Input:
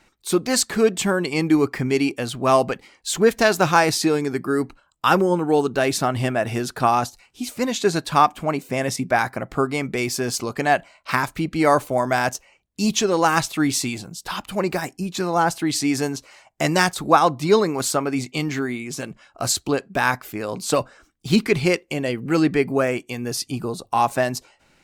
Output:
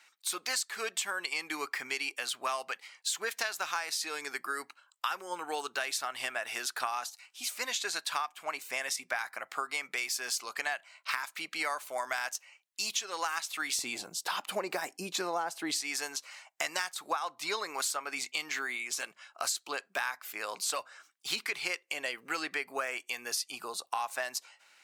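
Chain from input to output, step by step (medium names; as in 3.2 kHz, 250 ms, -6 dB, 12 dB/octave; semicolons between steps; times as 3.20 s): high-pass 1.3 kHz 12 dB/octave, from 13.79 s 520 Hz, from 15.81 s 1.1 kHz; compression 8:1, threshold -30 dBFS, peak gain reduction 16 dB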